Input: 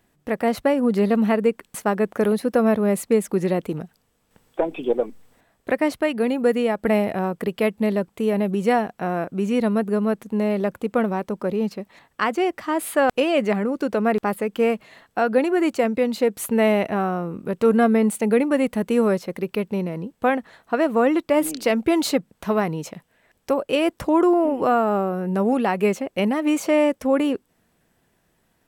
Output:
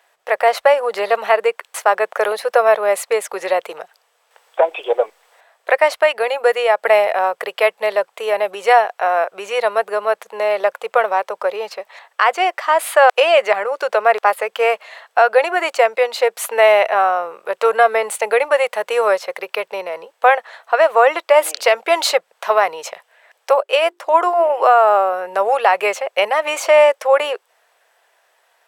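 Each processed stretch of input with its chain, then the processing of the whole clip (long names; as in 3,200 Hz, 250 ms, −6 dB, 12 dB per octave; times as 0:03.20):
0:23.60–0:24.50: mains-hum notches 50/100/150/200/250/300/350/400 Hz + expander for the loud parts, over −36 dBFS
whole clip: inverse Chebyshev high-pass filter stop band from 280 Hz, stop band 40 dB; high-shelf EQ 7,300 Hz −10 dB; boost into a limiter +12.5 dB; level −1 dB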